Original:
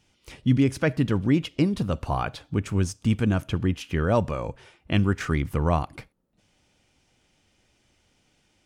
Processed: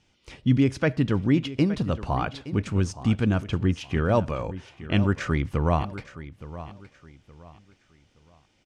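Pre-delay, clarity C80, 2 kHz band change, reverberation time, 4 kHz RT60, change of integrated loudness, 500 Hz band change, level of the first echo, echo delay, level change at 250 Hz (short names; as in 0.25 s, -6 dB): none, none, 0.0 dB, none, none, 0.0 dB, 0.0 dB, -15.0 dB, 0.869 s, 0.0 dB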